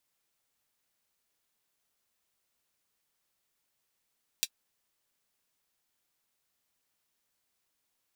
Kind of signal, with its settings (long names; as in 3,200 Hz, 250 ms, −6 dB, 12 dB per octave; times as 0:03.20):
closed synth hi-hat, high-pass 3,300 Hz, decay 0.06 s